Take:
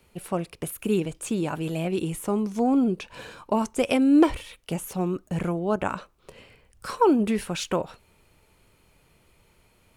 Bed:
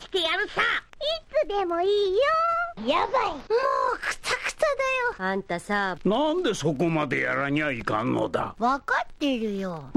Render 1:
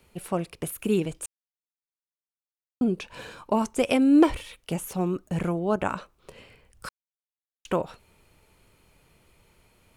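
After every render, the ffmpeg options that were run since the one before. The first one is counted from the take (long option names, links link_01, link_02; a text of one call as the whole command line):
ffmpeg -i in.wav -filter_complex "[0:a]asplit=5[link_01][link_02][link_03][link_04][link_05];[link_01]atrim=end=1.26,asetpts=PTS-STARTPTS,afade=type=out:start_time=1.256:duration=0.004:curve=hsin[link_06];[link_02]atrim=start=1.26:end=2.81,asetpts=PTS-STARTPTS,volume=0[link_07];[link_03]atrim=start=2.81:end=6.89,asetpts=PTS-STARTPTS,afade=type=in:duration=0.004:curve=hsin,afade=type=out:start_time=4.076:duration=0.004:curve=hsin[link_08];[link_04]atrim=start=6.89:end=7.65,asetpts=PTS-STARTPTS,volume=0[link_09];[link_05]atrim=start=7.65,asetpts=PTS-STARTPTS,afade=type=in:duration=0.004:curve=hsin[link_10];[link_06][link_07][link_08][link_09][link_10]concat=n=5:v=0:a=1" out.wav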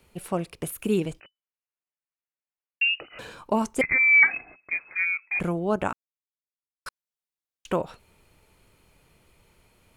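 ffmpeg -i in.wav -filter_complex "[0:a]asettb=1/sr,asplit=3[link_01][link_02][link_03];[link_01]atrim=end=1.204[link_04];[link_02]atrim=start=1.2:end=3.19,asetpts=PTS-STARTPTS,afade=type=in:duration=0.004:curve=qsin,afade=type=out:start_time=1.986:duration=0.004:curve=qsin,lowpass=frequency=2600:width_type=q:width=0.5098,lowpass=frequency=2600:width_type=q:width=0.6013,lowpass=frequency=2600:width_type=q:width=0.9,lowpass=frequency=2600:width_type=q:width=2.563,afreqshift=-3000[link_05];[link_03]atrim=start=3.186[link_06];[link_04][link_05]acrossfade=duration=0.004:curve1=hsin:curve2=qsin[link_07];[link_07][link_06]acrossfade=duration=0.004:curve1=qsin:curve2=hsin,asettb=1/sr,asplit=3[link_08][link_09][link_10];[link_08]atrim=end=3.814[link_11];[link_09]atrim=start=3.81:end=5.4,asetpts=PTS-STARTPTS,afade=type=in:duration=0.004:curve=qsin,afade=type=out:start_time=1.586:duration=0.004:curve=qsin,lowpass=frequency=2200:width_type=q:width=0.5098,lowpass=frequency=2200:width_type=q:width=0.6013,lowpass=frequency=2200:width_type=q:width=0.9,lowpass=frequency=2200:width_type=q:width=2.563,afreqshift=-2600[link_12];[link_10]atrim=start=5.396[link_13];[link_11][link_12]acrossfade=duration=0.004:curve1=hsin:curve2=qsin[link_14];[link_14][link_13]acrossfade=duration=0.004:curve1=qsin:curve2=hsin,asplit=3[link_15][link_16][link_17];[link_15]atrim=end=5.93,asetpts=PTS-STARTPTS,afade=type=out:start_time=5.926:duration=0.004:curve=hsin[link_18];[link_16]atrim=start=5.93:end=6.86,asetpts=PTS-STARTPTS,volume=0[link_19];[link_17]atrim=start=6.86,asetpts=PTS-STARTPTS,afade=type=in:duration=0.004:curve=hsin[link_20];[link_18][link_19][link_20]concat=n=3:v=0:a=1" out.wav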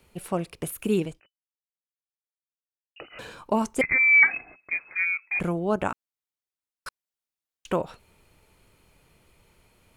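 ffmpeg -i in.wav -filter_complex "[0:a]asplit=2[link_01][link_02];[link_01]atrim=end=2.96,asetpts=PTS-STARTPTS,afade=type=out:start_time=1.02:duration=1.94:curve=exp[link_03];[link_02]atrim=start=2.96,asetpts=PTS-STARTPTS,afade=type=in:duration=0.004:curve=hsin[link_04];[link_03][link_04]concat=n=2:v=0:a=1" out.wav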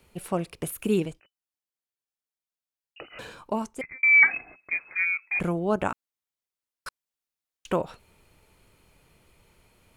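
ffmpeg -i in.wav -filter_complex "[0:a]asplit=2[link_01][link_02];[link_01]atrim=end=4.03,asetpts=PTS-STARTPTS,afade=type=out:start_time=3.22:duration=0.81[link_03];[link_02]atrim=start=4.03,asetpts=PTS-STARTPTS,afade=type=in:duration=0.004:curve=hsin[link_04];[link_03][link_04]concat=n=2:v=0:a=1" out.wav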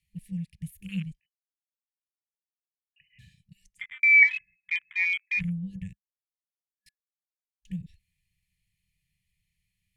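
ffmpeg -i in.wav -af "afftfilt=real='re*(1-between(b*sr/4096,200,1700))':imag='im*(1-between(b*sr/4096,200,1700))':win_size=4096:overlap=0.75,afwtdn=0.0126" out.wav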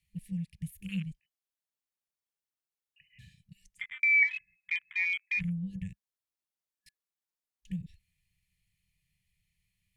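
ffmpeg -i in.wav -af "acompressor=threshold=-34dB:ratio=1.5" out.wav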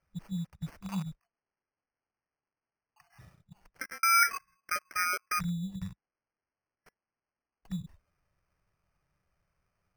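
ffmpeg -i in.wav -af "acrusher=samples=12:mix=1:aa=0.000001" out.wav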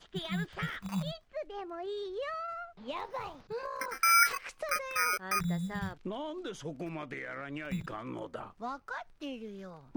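ffmpeg -i in.wav -i bed.wav -filter_complex "[1:a]volume=-15.5dB[link_01];[0:a][link_01]amix=inputs=2:normalize=0" out.wav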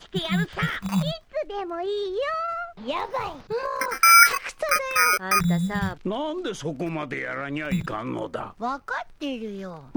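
ffmpeg -i in.wav -af "volume=10.5dB" out.wav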